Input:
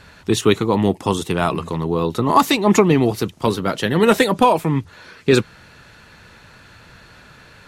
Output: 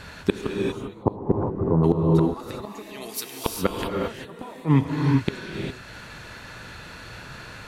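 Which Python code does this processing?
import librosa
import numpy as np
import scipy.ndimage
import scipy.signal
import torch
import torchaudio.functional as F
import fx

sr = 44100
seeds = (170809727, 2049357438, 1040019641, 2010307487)

p1 = fx.differentiator(x, sr, at=(2.82, 3.46))
p2 = fx.rider(p1, sr, range_db=3, speed_s=0.5)
p3 = p1 + (p2 * 10.0 ** (-2.0 / 20.0))
p4 = fx.gaussian_blur(p3, sr, sigma=9.2, at=(0.76, 1.83), fade=0.02)
p5 = fx.gate_flip(p4, sr, shuts_db=-4.0, range_db=-30)
p6 = fx.rev_gated(p5, sr, seeds[0], gate_ms=430, shape='rising', drr_db=0.0)
y = p6 * 10.0 ** (-2.0 / 20.0)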